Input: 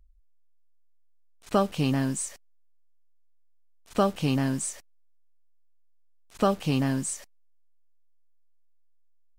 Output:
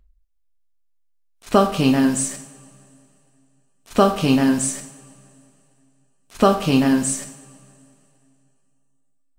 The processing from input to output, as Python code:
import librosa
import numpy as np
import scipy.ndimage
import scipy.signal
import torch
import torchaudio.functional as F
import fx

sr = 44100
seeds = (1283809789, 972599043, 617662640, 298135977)

y = fx.rev_double_slope(x, sr, seeds[0], early_s=0.65, late_s=2.8, knee_db=-19, drr_db=5.0)
y = fx.noise_reduce_blind(y, sr, reduce_db=9)
y = y * 10.0 ** (8.0 / 20.0)